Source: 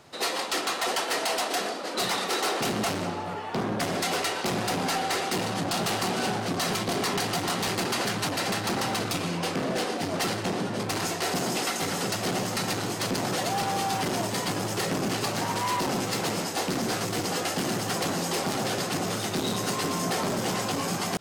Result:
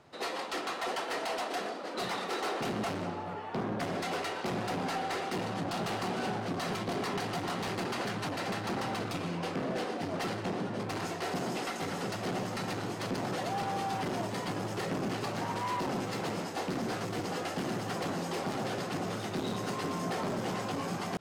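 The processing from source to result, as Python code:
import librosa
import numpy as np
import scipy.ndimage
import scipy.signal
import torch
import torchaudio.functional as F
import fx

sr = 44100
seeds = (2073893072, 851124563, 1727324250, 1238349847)

y = fx.high_shelf(x, sr, hz=4100.0, db=-12.0)
y = F.gain(torch.from_numpy(y), -5.0).numpy()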